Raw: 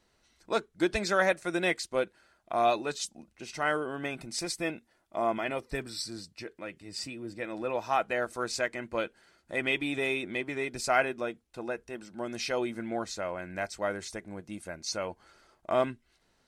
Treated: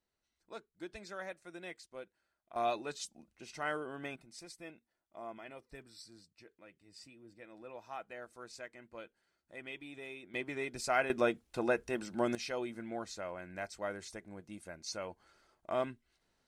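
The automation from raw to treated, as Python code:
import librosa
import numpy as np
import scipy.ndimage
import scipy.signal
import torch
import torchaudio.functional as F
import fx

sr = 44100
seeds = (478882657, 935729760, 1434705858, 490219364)

y = fx.gain(x, sr, db=fx.steps((0.0, -18.5), (2.56, -8.0), (4.16, -17.0), (10.34, -5.5), (11.1, 4.0), (12.35, -7.5)))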